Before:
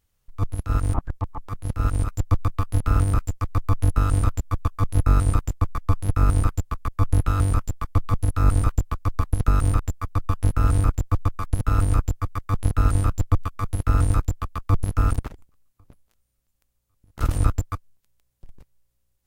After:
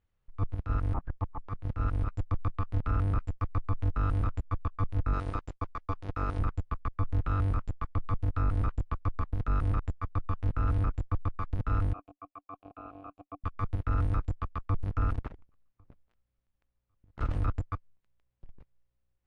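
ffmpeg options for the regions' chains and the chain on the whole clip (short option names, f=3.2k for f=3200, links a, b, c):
-filter_complex "[0:a]asettb=1/sr,asplit=3[a][b][c];[a]atrim=end=5.134[d];[b]atrim=start=5.13:end=6.39,asetpts=PTS-STARTPTS,afade=t=in:d=0.004:c=qsin,afade=t=out:st=1.256:d=0.004:c=qsin,lowpass=6.3k,bass=f=250:g=-10,treble=f=4k:g=9,agate=range=-33dB:threshold=-39dB:ratio=3:release=100:detection=peak[e];[c]atrim=start=6.386[f];[d][e]acrossfade=d=0.004:c1=hsin:c2=qsin[g];[g][f]acrossfade=d=0.004:c1=qsin:c2=hsin,asettb=1/sr,asplit=3[h][i][j];[h]atrim=end=11.934[k];[i]atrim=start=11.93:end=13.44,asetpts=PTS-STARTPTS,afade=t=in:d=0.004:c=qsin,afade=t=out:st=1.506:d=0.004:c=qsin,asplit=3[l][m][n];[l]bandpass=f=730:t=q:w=8,volume=0dB[o];[m]bandpass=f=1.09k:t=q:w=8,volume=-6dB[p];[n]bandpass=f=2.44k:t=q:w=8,volume=-9dB[q];[o][p][q]amix=inputs=3:normalize=0,equalizer=f=290:w=4.2:g=12.5[r];[j]atrim=start=13.436[s];[k][r]acrossfade=d=0.004:c1=hsin:c2=qsin[t];[t][s]acrossfade=d=0.004:c1=qsin:c2=hsin,lowpass=2.5k,alimiter=limit=-16dB:level=0:latency=1:release=12,volume=-5.5dB"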